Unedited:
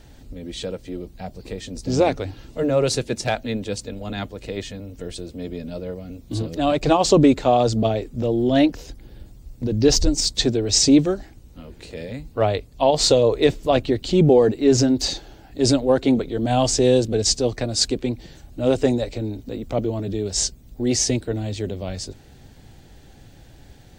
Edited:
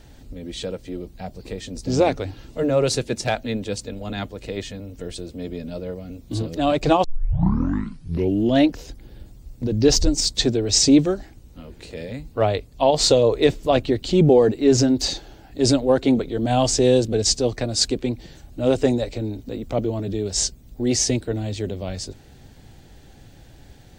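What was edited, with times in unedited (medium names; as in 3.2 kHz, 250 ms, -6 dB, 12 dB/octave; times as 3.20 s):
7.04 s: tape start 1.52 s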